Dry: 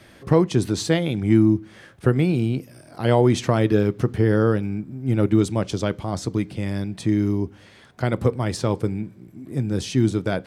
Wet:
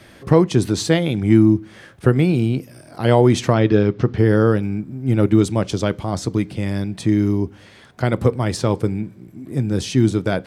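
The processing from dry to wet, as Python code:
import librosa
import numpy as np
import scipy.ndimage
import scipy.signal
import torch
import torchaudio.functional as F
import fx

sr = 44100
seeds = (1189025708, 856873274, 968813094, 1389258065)

y = fx.lowpass(x, sr, hz=5600.0, slope=24, at=(3.53, 4.18))
y = F.gain(torch.from_numpy(y), 3.5).numpy()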